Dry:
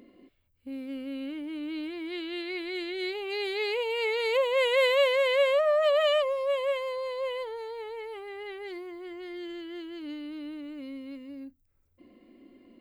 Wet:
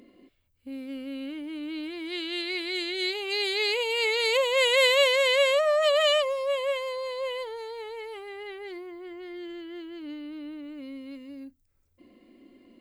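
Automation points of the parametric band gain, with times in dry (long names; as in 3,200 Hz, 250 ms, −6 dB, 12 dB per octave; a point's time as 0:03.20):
parametric band 6,900 Hz 2.2 octaves
0:01.82 +4.5 dB
0:02.25 +14 dB
0:06.01 +14 dB
0:06.54 +7.5 dB
0:08.14 +7.5 dB
0:08.91 −3.5 dB
0:10.56 −3.5 dB
0:11.22 +5.5 dB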